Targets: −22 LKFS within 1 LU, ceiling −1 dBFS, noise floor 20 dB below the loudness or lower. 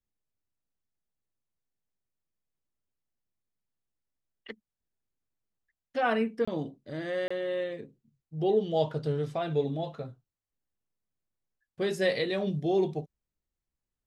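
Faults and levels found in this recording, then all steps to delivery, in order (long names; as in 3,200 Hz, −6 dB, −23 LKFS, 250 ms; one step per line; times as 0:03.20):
number of dropouts 2; longest dropout 25 ms; integrated loudness −30.5 LKFS; sample peak −14.5 dBFS; target loudness −22.0 LKFS
→ repair the gap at 0:06.45/0:07.28, 25 ms
level +8.5 dB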